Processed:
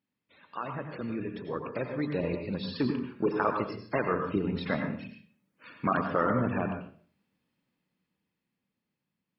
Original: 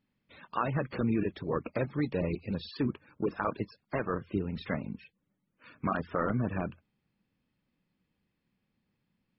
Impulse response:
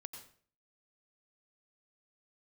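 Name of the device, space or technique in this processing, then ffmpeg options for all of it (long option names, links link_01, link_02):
far laptop microphone: -filter_complex "[0:a]asettb=1/sr,asplit=3[link_01][link_02][link_03];[link_01]atrim=end=2.944[link_04];[link_02]atrim=start=2.94:end=3.4,asetpts=PTS-STARTPTS,afade=type=in:duration=0.004:curve=qsin,afade=type=out:start_time=0.456:duration=0.004:curve=qsin,asplit=2[link_05][link_06];[link_06]adelay=35,volume=-9.5dB[link_07];[link_05][link_07]amix=inputs=2:normalize=0,atrim=end_sample=20286[link_08];[link_03]atrim=start=3.396[link_09];[link_04][link_08]acrossfade=duration=0.004:curve1=hsin:curve2=qsin[link_10];[link_10][link_09]acrossfade=duration=0.004:curve1=qsin:curve2=hsin[link_11];[1:a]atrim=start_sample=2205[link_12];[link_11][link_12]afir=irnorm=-1:irlink=0,highpass=frequency=180:poles=1,dynaudnorm=framelen=250:gausssize=17:maxgain=10dB"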